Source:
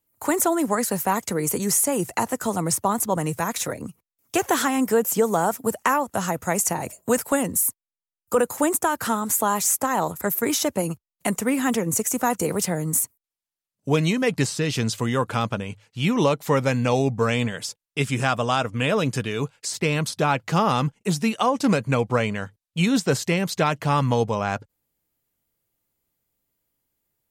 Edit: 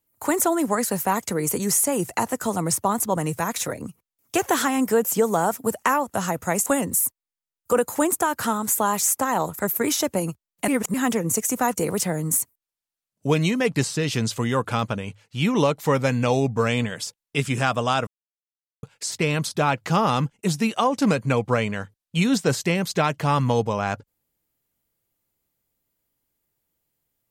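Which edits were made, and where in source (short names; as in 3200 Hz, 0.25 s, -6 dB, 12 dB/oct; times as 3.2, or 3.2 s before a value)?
6.66–7.28 cut
11.3–11.56 reverse
18.69–19.45 mute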